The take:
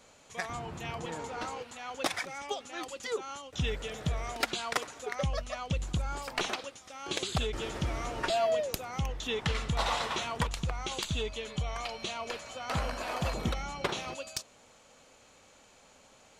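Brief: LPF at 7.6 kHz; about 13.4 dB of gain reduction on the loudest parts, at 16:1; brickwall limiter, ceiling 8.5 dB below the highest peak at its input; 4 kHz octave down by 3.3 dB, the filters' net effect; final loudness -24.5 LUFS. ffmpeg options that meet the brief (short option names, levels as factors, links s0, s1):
-af "lowpass=7600,equalizer=f=4000:t=o:g=-4,acompressor=threshold=0.0112:ratio=16,volume=10.6,alimiter=limit=0.2:level=0:latency=1"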